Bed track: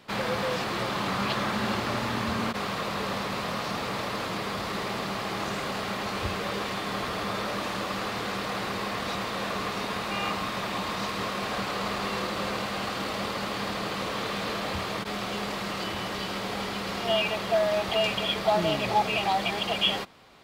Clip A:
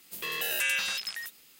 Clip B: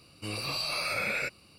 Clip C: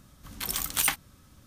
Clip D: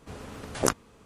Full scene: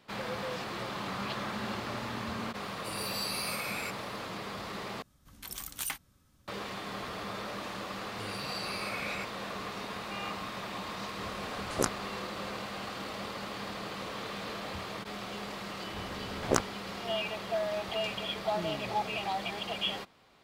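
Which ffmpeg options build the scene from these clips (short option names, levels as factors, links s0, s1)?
-filter_complex "[2:a]asplit=2[s0][s1];[4:a]asplit=2[s2][s3];[0:a]volume=0.398[s4];[s0]aemphasis=mode=production:type=75fm[s5];[s3]adynamicsmooth=sensitivity=3:basefreq=3300[s6];[s4]asplit=2[s7][s8];[s7]atrim=end=5.024[s9];[3:a]atrim=end=1.46,asetpts=PTS-STARTPTS,volume=0.299[s10];[s8]atrim=start=6.476[s11];[s5]atrim=end=1.58,asetpts=PTS-STARTPTS,volume=0.316,afade=t=in:d=0.004:c=hsin,afade=t=out:st=1.576:d=0.004:c=hsin,adelay=2620[s12];[s1]atrim=end=1.58,asetpts=PTS-STARTPTS,volume=0.422,afade=t=in:d=0.004:c=hsin,afade=t=out:st=1.576:d=0.004:c=hsin,adelay=7960[s13];[s2]atrim=end=1.05,asetpts=PTS-STARTPTS,volume=0.562,afade=t=in:d=0.004:c=hsin,afade=t=out:st=1.046:d=0.004:c=hsin,adelay=11160[s14];[s6]atrim=end=1.05,asetpts=PTS-STARTPTS,volume=0.794,afade=t=in:d=0.004:c=hsin,afade=t=out:st=1.046:d=0.004:c=hsin,adelay=700308S[s15];[s9][s10]acrossfade=d=0.004:c1=hsin:c2=hsin[s16];[s16][s11]acrossfade=d=0.004:c1=hsin:c2=hsin[s17];[s17][s12][s13][s14][s15]amix=inputs=5:normalize=0"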